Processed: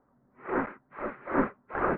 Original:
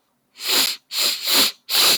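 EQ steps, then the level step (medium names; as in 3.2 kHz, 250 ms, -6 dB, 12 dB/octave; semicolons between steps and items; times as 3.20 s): steep low-pass 1.8 kHz 48 dB/octave; tilt EQ -2.5 dB/octave; -2.0 dB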